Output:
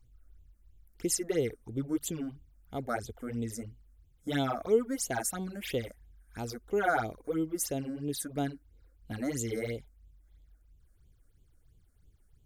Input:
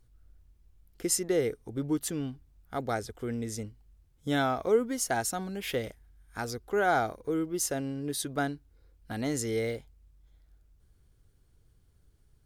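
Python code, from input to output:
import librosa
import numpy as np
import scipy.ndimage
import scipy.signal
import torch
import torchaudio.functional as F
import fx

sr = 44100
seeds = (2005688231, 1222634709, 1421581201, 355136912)

y = fx.phaser_stages(x, sr, stages=8, low_hz=110.0, high_hz=1700.0, hz=3.0, feedback_pct=30)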